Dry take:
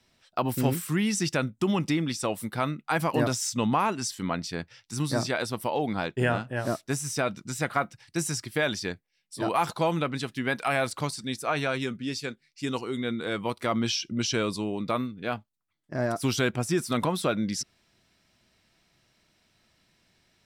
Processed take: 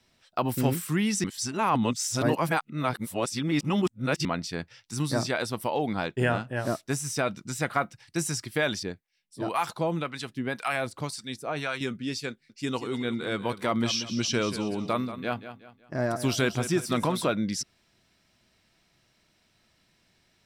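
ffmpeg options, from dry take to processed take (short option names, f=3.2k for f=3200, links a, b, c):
-filter_complex "[0:a]asettb=1/sr,asplit=3[a][b][c];[a]atrim=end=8.834[d];[b]atrim=start=8.83:end=11.81,asetpts=PTS-STARTPTS,afade=t=in:d=0.004:c=qsin,afade=t=out:st=2.976:d=0.004:c=qsin,acrossover=split=750[e][f];[e]aeval=exprs='val(0)*(1-0.7/2+0.7/2*cos(2*PI*1.9*n/s))':c=same[g];[f]aeval=exprs='val(0)*(1-0.7/2-0.7/2*cos(2*PI*1.9*n/s))':c=same[h];[g][h]amix=inputs=2:normalize=0[i];[c]atrim=start=11.806[j];[d][i]acrossfade=d=0.004:c1=hsin:c2=qsin[k];[k][j]acrossfade=d=0.004:c1=qsin:c2=hsin,asettb=1/sr,asplit=3[l][m][n];[l]atrim=end=12.314[o];[m]atrim=start=12.31:end=17.3,asetpts=PTS-STARTPTS,afade=t=in:d=0.004:c=qsin,afade=t=out:st=4.986:d=0.004:c=qsin,aecho=1:1:184|368|552|736:0.251|0.0904|0.0326|0.0117,atrim=end_sample=220059[p];[n]atrim=start=17.296[q];[o][p]acrossfade=d=0.004:c1=hsin:c2=qsin[r];[r][q]acrossfade=d=0.004:c1=qsin:c2=hsin,asplit=3[s][t][u];[s]atrim=end=1.242[v];[t]atrim=start=1.238:end=4.252,asetpts=PTS-STARTPTS,areverse[w];[u]atrim=start=4.248[x];[v][w]acrossfade=d=0.004:c1=hsin:c2=hsin[y];[y][x]acrossfade=d=0.004:c1=hsin:c2=hsin"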